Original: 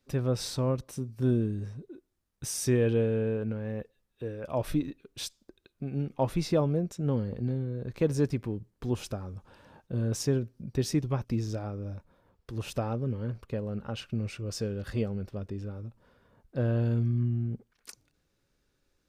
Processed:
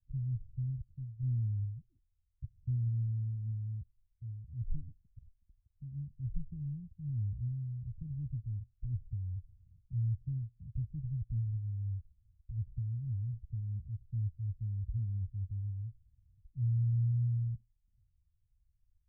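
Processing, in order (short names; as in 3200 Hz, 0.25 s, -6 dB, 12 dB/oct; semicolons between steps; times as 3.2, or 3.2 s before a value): inverse Chebyshev low-pass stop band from 580 Hz, stop band 80 dB; gain +5.5 dB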